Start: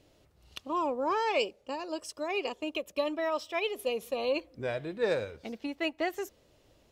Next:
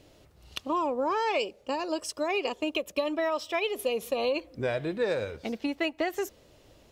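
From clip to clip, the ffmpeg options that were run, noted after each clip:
-af "acompressor=threshold=-31dB:ratio=6,volume=6.5dB"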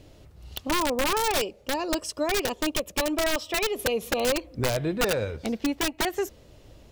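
-af "aeval=exprs='(mod(11.2*val(0)+1,2)-1)/11.2':c=same,lowshelf=f=180:g=9.5,volume=2dB"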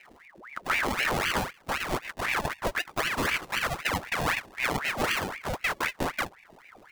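-filter_complex "[0:a]acrossover=split=150[a][b];[b]acrusher=samples=39:mix=1:aa=0.000001:lfo=1:lforange=23.4:lforate=0.52[c];[a][c]amix=inputs=2:normalize=0,aeval=exprs='val(0)*sin(2*PI*1300*n/s+1300*0.8/3.9*sin(2*PI*3.9*n/s))':c=same"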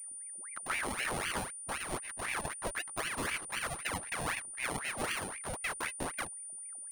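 -af "anlmdn=0.0398,aeval=exprs='val(0)+0.02*sin(2*PI*9300*n/s)':c=same,volume=-8.5dB"

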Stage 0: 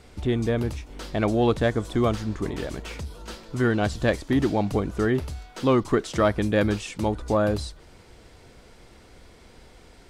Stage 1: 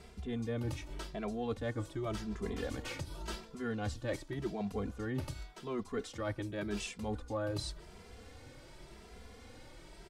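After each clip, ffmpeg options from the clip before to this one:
-filter_complex "[0:a]areverse,acompressor=threshold=-31dB:ratio=10,areverse,asplit=2[a][b];[b]adelay=2.6,afreqshift=0.89[c];[a][c]amix=inputs=2:normalize=1"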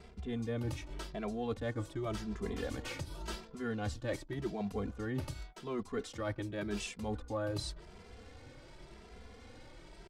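-af "anlmdn=0.0001"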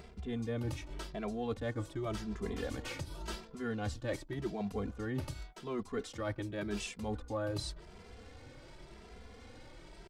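-af "acompressor=mode=upward:threshold=-49dB:ratio=2.5"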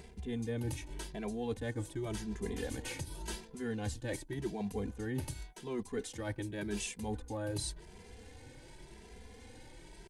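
-af "superequalizer=8b=0.562:10b=0.355:15b=1.78:16b=3.16"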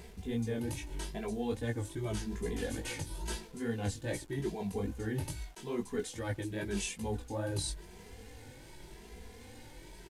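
-af "flanger=delay=16.5:depth=5.2:speed=2.4,acrusher=bits=10:mix=0:aa=0.000001,aresample=32000,aresample=44100,volume=5dB"

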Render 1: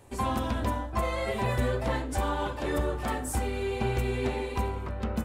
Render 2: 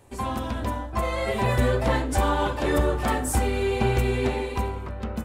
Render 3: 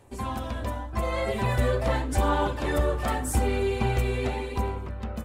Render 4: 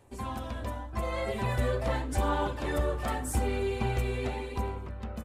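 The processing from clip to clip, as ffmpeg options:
-af "dynaudnorm=f=270:g=9:m=6.5dB"
-af "aphaser=in_gain=1:out_gain=1:delay=1.8:decay=0.3:speed=0.85:type=sinusoidal,volume=-3.5dB"
-af "aresample=32000,aresample=44100,volume=-4.5dB"

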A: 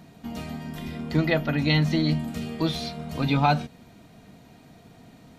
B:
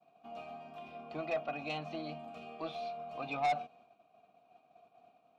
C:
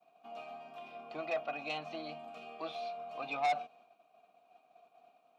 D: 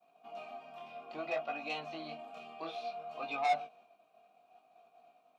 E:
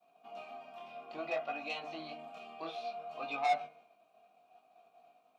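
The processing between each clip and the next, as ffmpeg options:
-filter_complex "[0:a]asplit=3[a][b][c];[a]bandpass=f=730:t=q:w=8,volume=0dB[d];[b]bandpass=f=1.09k:t=q:w=8,volume=-6dB[e];[c]bandpass=f=2.44k:t=q:w=8,volume=-9dB[f];[d][e][f]amix=inputs=3:normalize=0,agate=range=-33dB:threshold=-57dB:ratio=3:detection=peak,asoftclip=type=tanh:threshold=-29dB,volume=2dB"
-af "highpass=f=470:p=1,volume=1.5dB"
-af "flanger=delay=17:depth=7.7:speed=0.6,volume=3dB"
-af "bandreject=f=76.49:t=h:w=4,bandreject=f=152.98:t=h:w=4,bandreject=f=229.47:t=h:w=4,bandreject=f=305.96:t=h:w=4,bandreject=f=382.45:t=h:w=4,bandreject=f=458.94:t=h:w=4,bandreject=f=535.43:t=h:w=4,bandreject=f=611.92:t=h:w=4,bandreject=f=688.41:t=h:w=4,bandreject=f=764.9:t=h:w=4,bandreject=f=841.39:t=h:w=4,bandreject=f=917.88:t=h:w=4,bandreject=f=994.37:t=h:w=4,bandreject=f=1.07086k:t=h:w=4,bandreject=f=1.14735k:t=h:w=4,bandreject=f=1.22384k:t=h:w=4,bandreject=f=1.30033k:t=h:w=4,bandreject=f=1.37682k:t=h:w=4,bandreject=f=1.45331k:t=h:w=4,bandreject=f=1.5298k:t=h:w=4,bandreject=f=1.60629k:t=h:w=4,bandreject=f=1.68278k:t=h:w=4,bandreject=f=1.75927k:t=h:w=4,bandreject=f=1.83576k:t=h:w=4,bandreject=f=1.91225k:t=h:w=4,bandreject=f=1.98874k:t=h:w=4,bandreject=f=2.06523k:t=h:w=4,bandreject=f=2.14172k:t=h:w=4,bandreject=f=2.21821k:t=h:w=4,bandreject=f=2.2947k:t=h:w=4,bandreject=f=2.37119k:t=h:w=4,bandreject=f=2.44768k:t=h:w=4"

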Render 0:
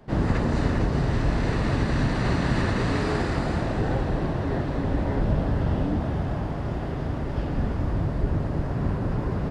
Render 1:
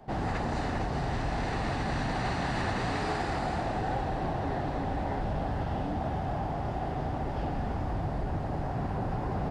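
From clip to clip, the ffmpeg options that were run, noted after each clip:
-filter_complex "[0:a]equalizer=f=770:t=o:w=0.41:g=12.5,acrossover=split=1200[a][b];[a]alimiter=limit=-21dB:level=0:latency=1[c];[c][b]amix=inputs=2:normalize=0,volume=-3.5dB"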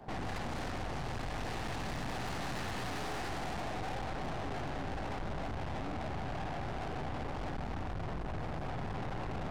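-af "aeval=exprs='(tanh(126*val(0)+0.75)-tanh(0.75))/126':c=same,volume=4.5dB"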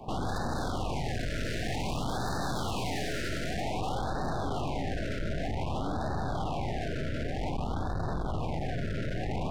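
-af "afftfilt=real='re*(1-between(b*sr/1024,920*pow(2600/920,0.5+0.5*sin(2*PI*0.53*pts/sr))/1.41,920*pow(2600/920,0.5+0.5*sin(2*PI*0.53*pts/sr))*1.41))':imag='im*(1-between(b*sr/1024,920*pow(2600/920,0.5+0.5*sin(2*PI*0.53*pts/sr))/1.41,920*pow(2600/920,0.5+0.5*sin(2*PI*0.53*pts/sr))*1.41))':win_size=1024:overlap=0.75,volume=6.5dB"

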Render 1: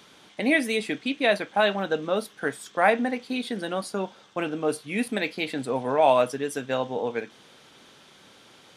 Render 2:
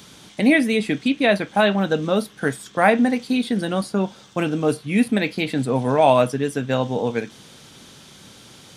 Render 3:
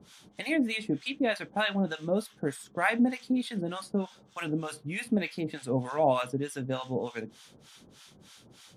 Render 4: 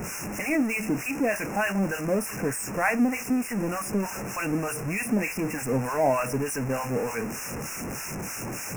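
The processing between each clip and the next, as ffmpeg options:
-filter_complex "[0:a]bass=f=250:g=12,treble=f=4k:g=9,acrossover=split=3400[a][b];[b]acompressor=threshold=-42dB:ratio=6[c];[a][c]amix=inputs=2:normalize=0,volume=3.5dB"
-filter_complex "[0:a]acrossover=split=830[a][b];[a]aeval=exprs='val(0)*(1-1/2+1/2*cos(2*PI*3.3*n/s))':c=same[c];[b]aeval=exprs='val(0)*(1-1/2-1/2*cos(2*PI*3.3*n/s))':c=same[d];[c][d]amix=inputs=2:normalize=0,volume=-5.5dB"
-af "aeval=exprs='val(0)+0.5*0.0422*sgn(val(0))':c=same,asuperstop=centerf=3800:order=20:qfactor=1.6"

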